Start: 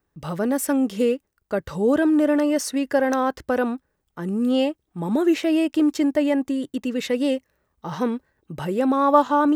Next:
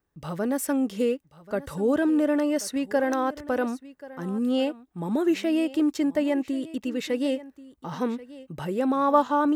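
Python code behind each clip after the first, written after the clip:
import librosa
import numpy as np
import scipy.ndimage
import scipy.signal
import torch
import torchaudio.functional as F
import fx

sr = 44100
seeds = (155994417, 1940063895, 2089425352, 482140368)

y = x + 10.0 ** (-18.0 / 20.0) * np.pad(x, (int(1084 * sr / 1000.0), 0))[:len(x)]
y = F.gain(torch.from_numpy(y), -4.0).numpy()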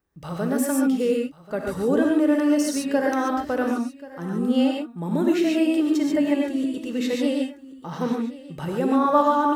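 y = fx.rev_gated(x, sr, seeds[0], gate_ms=160, shape='rising', drr_db=0.0)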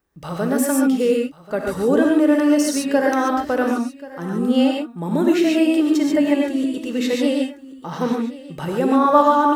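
y = fx.peak_eq(x, sr, hz=100.0, db=-4.0, octaves=2.2)
y = F.gain(torch.from_numpy(y), 5.0).numpy()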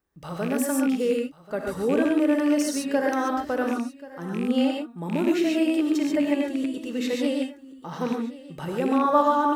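y = fx.rattle_buzz(x, sr, strikes_db=-22.0, level_db=-20.0)
y = F.gain(torch.from_numpy(y), -6.0).numpy()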